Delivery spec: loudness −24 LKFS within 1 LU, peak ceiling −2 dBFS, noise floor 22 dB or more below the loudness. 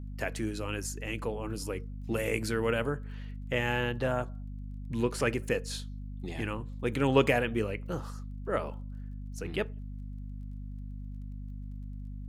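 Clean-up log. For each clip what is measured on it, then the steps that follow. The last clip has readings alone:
crackle rate 16 per second; mains hum 50 Hz; hum harmonics up to 250 Hz; level of the hum −37 dBFS; integrated loudness −33.5 LKFS; sample peak −9.0 dBFS; target loudness −24.0 LKFS
→ click removal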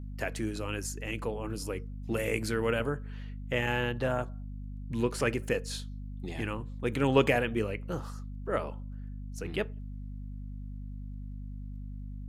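crackle rate 0.16 per second; mains hum 50 Hz; hum harmonics up to 250 Hz; level of the hum −37 dBFS
→ hum removal 50 Hz, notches 5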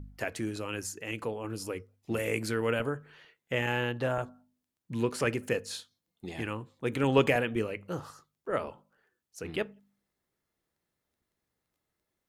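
mains hum none found; integrated loudness −32.5 LKFS; sample peak −9.5 dBFS; target loudness −24.0 LKFS
→ level +8.5 dB
brickwall limiter −2 dBFS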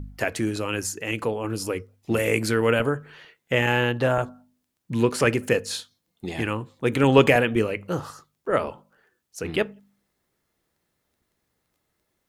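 integrated loudness −24.0 LKFS; sample peak −2.0 dBFS; background noise floor −77 dBFS

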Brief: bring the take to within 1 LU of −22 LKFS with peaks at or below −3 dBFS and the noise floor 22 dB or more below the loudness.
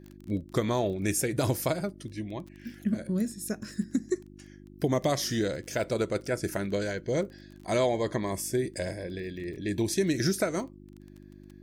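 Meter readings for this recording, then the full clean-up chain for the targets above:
crackle rate 21 per second; mains hum 50 Hz; hum harmonics up to 350 Hz; level of the hum −49 dBFS; integrated loudness −30.5 LKFS; sample peak −14.5 dBFS; target loudness −22.0 LKFS
→ click removal
hum removal 50 Hz, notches 7
level +8.5 dB

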